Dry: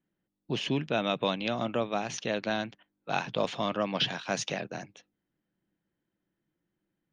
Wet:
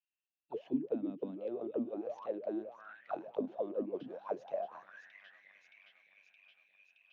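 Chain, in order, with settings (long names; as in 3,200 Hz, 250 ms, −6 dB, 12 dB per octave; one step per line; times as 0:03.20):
delay that swaps between a low-pass and a high-pass 310 ms, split 1,900 Hz, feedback 78%, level −12 dB
envelope filter 250–2,700 Hz, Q 17, down, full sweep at −24 dBFS
level +7 dB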